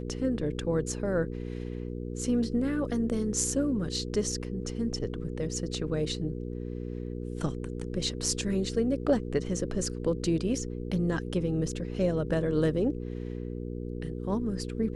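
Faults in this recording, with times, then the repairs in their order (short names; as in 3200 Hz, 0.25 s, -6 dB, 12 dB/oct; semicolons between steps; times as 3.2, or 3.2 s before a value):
hum 60 Hz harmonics 8 -36 dBFS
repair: de-hum 60 Hz, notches 8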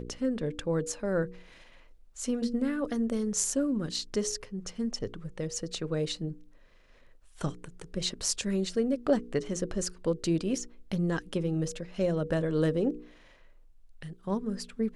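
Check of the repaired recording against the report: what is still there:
none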